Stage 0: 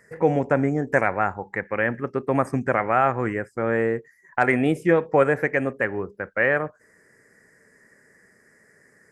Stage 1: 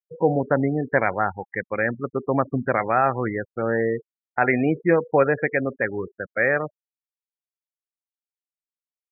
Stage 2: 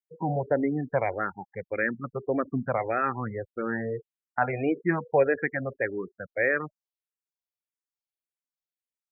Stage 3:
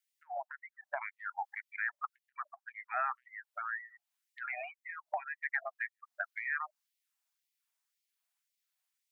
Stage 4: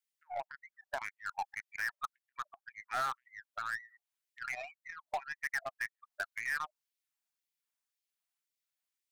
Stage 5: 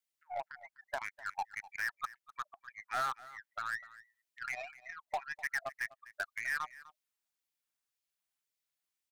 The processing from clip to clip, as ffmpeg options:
-af "afftfilt=real='re*gte(hypot(re,im),0.0562)':imag='im*gte(hypot(re,im),0.0562)':win_size=1024:overlap=0.75"
-filter_complex "[0:a]asplit=2[s0][s1];[s1]afreqshift=-1.7[s2];[s0][s2]amix=inputs=2:normalize=1,volume=0.75"
-af "alimiter=limit=0.106:level=0:latency=1:release=31,acompressor=threshold=0.0141:ratio=10,afftfilt=real='re*gte(b*sr/1024,570*pow(1900/570,0.5+0.5*sin(2*PI*1.9*pts/sr)))':imag='im*gte(b*sr/1024,570*pow(1900/570,0.5+0.5*sin(2*PI*1.9*pts/sr)))':win_size=1024:overlap=0.75,volume=2.99"
-af "aeval=exprs='0.0891*(cos(1*acos(clip(val(0)/0.0891,-1,1)))-cos(1*PI/2))+0.0282*(cos(2*acos(clip(val(0)/0.0891,-1,1)))-cos(2*PI/2))+0.00141*(cos(4*acos(clip(val(0)/0.0891,-1,1)))-cos(4*PI/2))+0.00891*(cos(7*acos(clip(val(0)/0.0891,-1,1)))-cos(7*PI/2))+0.001*(cos(8*acos(clip(val(0)/0.0891,-1,1)))-cos(8*PI/2))':c=same,asoftclip=type=hard:threshold=0.02,volume=1.88"
-af "aecho=1:1:251:0.119"

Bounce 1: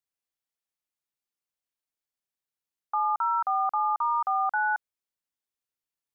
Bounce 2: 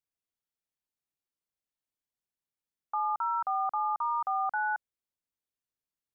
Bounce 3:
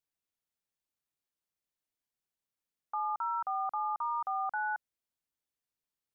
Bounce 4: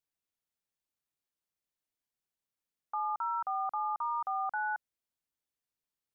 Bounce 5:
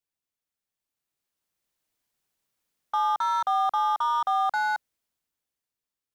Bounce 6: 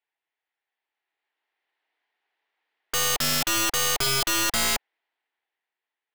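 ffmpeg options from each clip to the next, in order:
-af "lowshelf=f=470:g=7.5,volume=0.531"
-af "alimiter=level_in=1.41:limit=0.0631:level=0:latency=1,volume=0.708"
-af anull
-filter_complex "[0:a]dynaudnorm=f=250:g=11:m=3.55,acrossover=split=790|880[s0][s1][s2];[s2]asoftclip=type=hard:threshold=0.0282[s3];[s0][s1][s3]amix=inputs=3:normalize=0"
-af "highpass=f=380:w=0.5412,highpass=f=380:w=1.3066,equalizer=f=550:t=q:w=4:g=-7,equalizer=f=820:t=q:w=4:g=6,equalizer=f=1200:t=q:w=4:g=-4,equalizer=f=1900:t=q:w=4:g=7,lowpass=f=3300:w=0.5412,lowpass=f=3300:w=1.3066,aeval=exprs='(mod(18.8*val(0)+1,2)-1)/18.8':c=same,aeval=exprs='0.0562*(cos(1*acos(clip(val(0)/0.0562,-1,1)))-cos(1*PI/2))+0.00794*(cos(4*acos(clip(val(0)/0.0562,-1,1)))-cos(4*PI/2))':c=same,volume=2.11"

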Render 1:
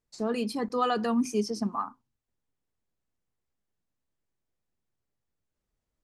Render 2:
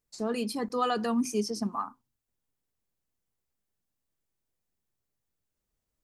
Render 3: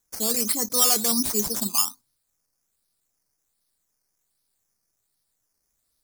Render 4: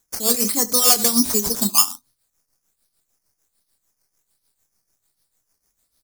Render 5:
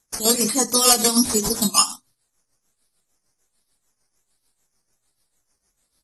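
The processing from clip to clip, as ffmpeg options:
-af "highshelf=f=7000:g=8.5,volume=0.841"
-af "acrusher=samples=9:mix=1:aa=0.000001:lfo=1:lforange=5.4:lforate=1.3,aexciter=amount=8.9:drive=6.4:freq=4300,asoftclip=type=hard:threshold=0.282"
-filter_complex "[0:a]asplit=2[s0][s1];[s1]aecho=0:1:25|71:0.282|0.224[s2];[s0][s2]amix=inputs=2:normalize=0,tremolo=f=6.7:d=0.68,volume=2.37"
-ar 48000 -c:a aac -b:a 32k

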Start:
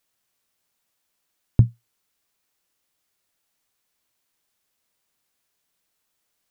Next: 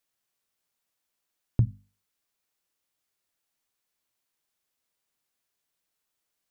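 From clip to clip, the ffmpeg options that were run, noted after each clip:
-af "bandreject=f=50:t=h:w=6,bandreject=f=100:t=h:w=6,bandreject=f=150:t=h:w=6,bandreject=f=200:t=h:w=6,bandreject=f=250:t=h:w=6,volume=0.473"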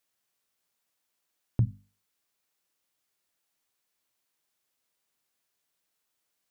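-filter_complex "[0:a]lowshelf=f=88:g=-6,asplit=2[s0][s1];[s1]alimiter=limit=0.1:level=0:latency=1:release=36,volume=1.19[s2];[s0][s2]amix=inputs=2:normalize=0,volume=0.562"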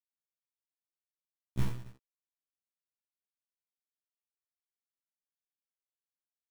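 -af "acrusher=bits=3:dc=4:mix=0:aa=0.000001,aecho=1:1:30|69|119.7|185.6|271.3:0.631|0.398|0.251|0.158|0.1,afftfilt=real='re*1.73*eq(mod(b,3),0)':imag='im*1.73*eq(mod(b,3),0)':win_size=2048:overlap=0.75,volume=0.841"

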